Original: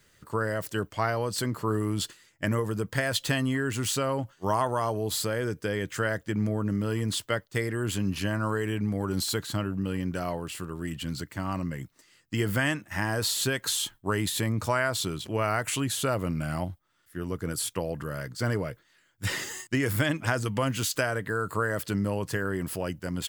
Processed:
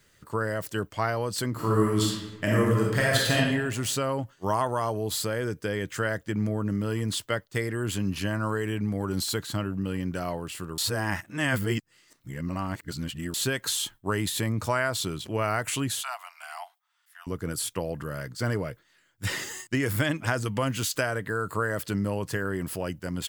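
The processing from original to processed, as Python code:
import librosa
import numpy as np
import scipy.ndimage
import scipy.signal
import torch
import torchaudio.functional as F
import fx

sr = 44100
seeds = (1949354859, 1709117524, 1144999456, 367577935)

y = fx.reverb_throw(x, sr, start_s=1.51, length_s=1.86, rt60_s=1.1, drr_db=-4.0)
y = fx.cheby_ripple_highpass(y, sr, hz=690.0, ripple_db=3, at=(16.01, 17.27))
y = fx.edit(y, sr, fx.reverse_span(start_s=10.78, length_s=2.56), tone=tone)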